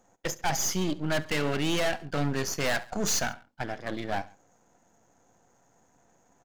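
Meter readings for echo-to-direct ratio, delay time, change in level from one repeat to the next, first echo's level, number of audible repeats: -19.0 dB, 69 ms, -5.5 dB, -20.0 dB, 2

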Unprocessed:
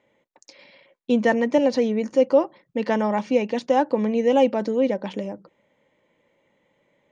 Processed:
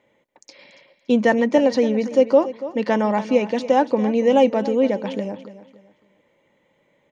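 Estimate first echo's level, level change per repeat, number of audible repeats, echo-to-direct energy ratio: -14.5 dB, -10.0 dB, 3, -14.0 dB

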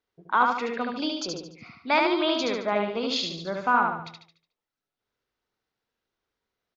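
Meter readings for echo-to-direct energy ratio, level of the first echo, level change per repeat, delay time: -2.0 dB, -3.0 dB, -7.5 dB, 73 ms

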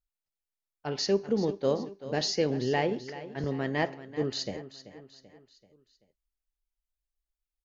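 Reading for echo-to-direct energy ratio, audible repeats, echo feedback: -13.5 dB, 4, 48%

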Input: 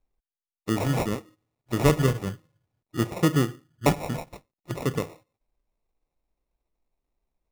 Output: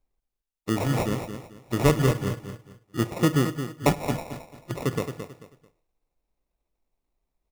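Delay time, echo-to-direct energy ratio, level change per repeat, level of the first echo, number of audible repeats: 0.22 s, -8.5 dB, -11.0 dB, -9.0 dB, 3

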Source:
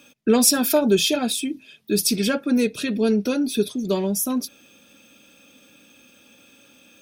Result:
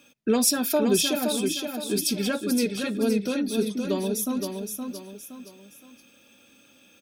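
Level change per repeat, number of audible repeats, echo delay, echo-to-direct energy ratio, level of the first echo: -8.5 dB, 3, 0.518 s, -5.0 dB, -5.5 dB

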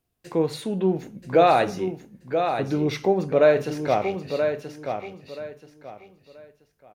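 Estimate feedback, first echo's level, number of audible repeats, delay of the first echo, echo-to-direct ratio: 26%, -7.0 dB, 3, 0.98 s, -6.5 dB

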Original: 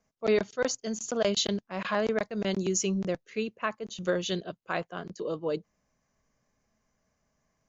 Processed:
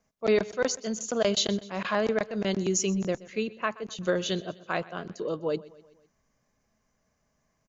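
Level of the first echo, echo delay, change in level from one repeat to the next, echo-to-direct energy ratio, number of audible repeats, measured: -20.0 dB, 0.126 s, -5.5 dB, -18.5 dB, 3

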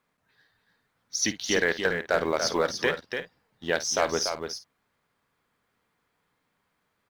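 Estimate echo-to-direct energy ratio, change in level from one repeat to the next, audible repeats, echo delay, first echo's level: -5.5 dB, no steady repeat, 3, 53 ms, -15.0 dB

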